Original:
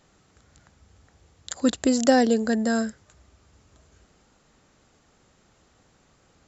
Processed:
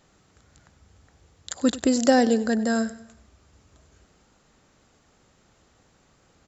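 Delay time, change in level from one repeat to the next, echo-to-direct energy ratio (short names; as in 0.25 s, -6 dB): 97 ms, -6.5 dB, -16.5 dB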